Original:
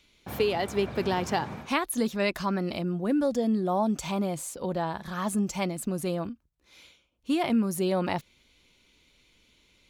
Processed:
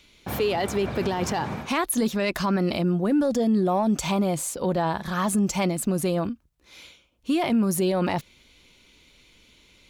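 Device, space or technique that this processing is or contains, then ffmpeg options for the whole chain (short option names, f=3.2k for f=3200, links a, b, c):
soft clipper into limiter: -af "asoftclip=type=tanh:threshold=-14dB,alimiter=limit=-23dB:level=0:latency=1:release=16,volume=7dB"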